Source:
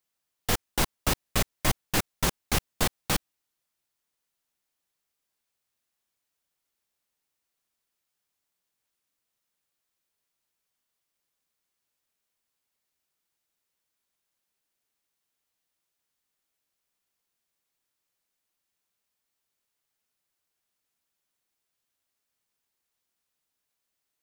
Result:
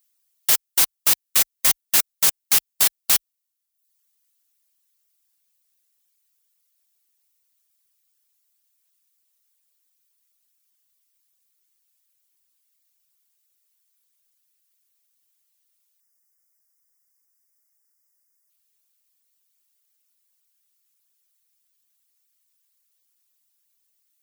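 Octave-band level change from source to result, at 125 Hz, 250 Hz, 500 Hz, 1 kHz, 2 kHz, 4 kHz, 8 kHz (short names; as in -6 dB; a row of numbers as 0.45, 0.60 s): under -15 dB, -11.0 dB, -6.0 dB, -1.5 dB, +3.0 dB, +7.0 dB, +12.0 dB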